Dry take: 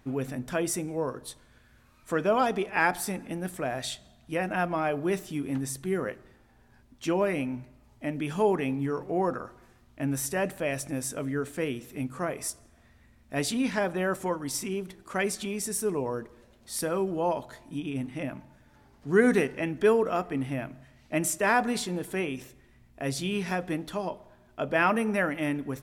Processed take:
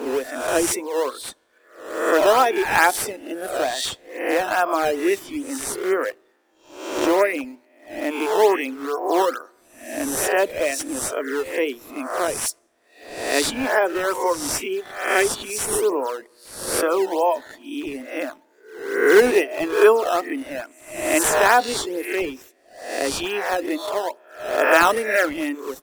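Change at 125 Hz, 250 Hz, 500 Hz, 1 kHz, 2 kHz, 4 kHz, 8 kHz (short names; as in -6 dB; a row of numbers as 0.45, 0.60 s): -10.5, +3.0, +9.0, +9.5, +9.5, +10.5, +9.0 dB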